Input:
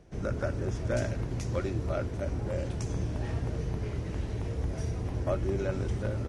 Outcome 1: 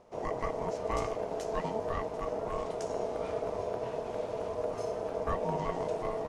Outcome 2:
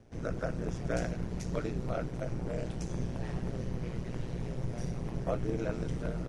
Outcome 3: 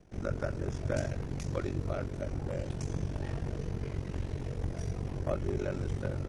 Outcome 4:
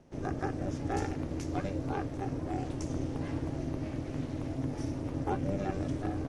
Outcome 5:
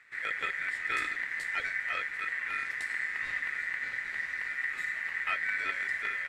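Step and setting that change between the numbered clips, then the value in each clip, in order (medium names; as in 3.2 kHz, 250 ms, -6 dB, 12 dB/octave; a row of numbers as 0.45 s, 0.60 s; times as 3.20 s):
ring modulator, frequency: 550 Hz, 60 Hz, 23 Hz, 200 Hz, 1.9 kHz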